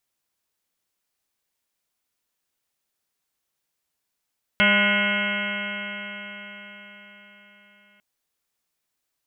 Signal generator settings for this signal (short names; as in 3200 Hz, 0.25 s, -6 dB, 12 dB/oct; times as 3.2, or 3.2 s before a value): stretched partials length 3.40 s, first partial 202 Hz, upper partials -15.5/-3/-13/-7/-14.5/2/-11.5/-4/3.5/-11/-2/-4.5/-4.5 dB, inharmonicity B 0.0014, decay 4.86 s, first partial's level -22.5 dB